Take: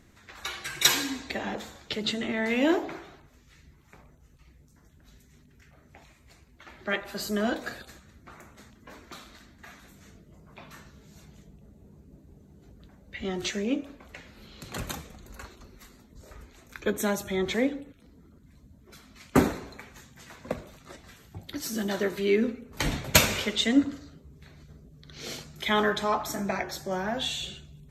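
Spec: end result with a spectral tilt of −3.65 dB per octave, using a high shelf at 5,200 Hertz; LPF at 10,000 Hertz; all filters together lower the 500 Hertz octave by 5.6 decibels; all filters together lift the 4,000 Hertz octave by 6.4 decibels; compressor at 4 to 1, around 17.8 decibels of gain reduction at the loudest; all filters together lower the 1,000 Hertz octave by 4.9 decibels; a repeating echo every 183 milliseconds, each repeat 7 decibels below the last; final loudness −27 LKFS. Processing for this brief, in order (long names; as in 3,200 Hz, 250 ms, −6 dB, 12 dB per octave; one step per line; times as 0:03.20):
low-pass filter 10,000 Hz
parametric band 500 Hz −6.5 dB
parametric band 1,000 Hz −5 dB
parametric band 4,000 Hz +4.5 dB
high-shelf EQ 5,200 Hz +8.5 dB
downward compressor 4 to 1, threshold −32 dBFS
repeating echo 183 ms, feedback 45%, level −7 dB
level +8.5 dB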